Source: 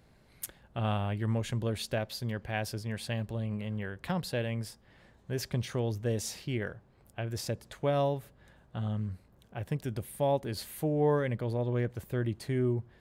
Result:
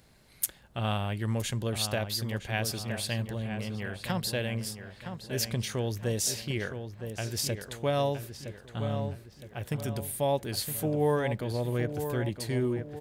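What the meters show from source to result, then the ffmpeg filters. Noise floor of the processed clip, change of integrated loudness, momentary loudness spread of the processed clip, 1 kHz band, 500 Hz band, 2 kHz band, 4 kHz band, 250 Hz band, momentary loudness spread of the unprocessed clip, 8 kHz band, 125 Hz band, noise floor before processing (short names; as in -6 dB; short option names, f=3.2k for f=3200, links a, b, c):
-57 dBFS, +1.5 dB, 9 LU, +1.5 dB, +1.0 dB, +3.5 dB, +7.5 dB, +1.0 dB, 10 LU, +9.5 dB, +0.5 dB, -62 dBFS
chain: -filter_complex "[0:a]highshelf=f=2.8k:g=10.5,asplit=2[a][b];[b]adelay=965,lowpass=f=2.6k:p=1,volume=-8dB,asplit=2[c][d];[d]adelay=965,lowpass=f=2.6k:p=1,volume=0.46,asplit=2[e][f];[f]adelay=965,lowpass=f=2.6k:p=1,volume=0.46,asplit=2[g][h];[h]adelay=965,lowpass=f=2.6k:p=1,volume=0.46,asplit=2[i][j];[j]adelay=965,lowpass=f=2.6k:p=1,volume=0.46[k];[c][e][g][i][k]amix=inputs=5:normalize=0[l];[a][l]amix=inputs=2:normalize=0"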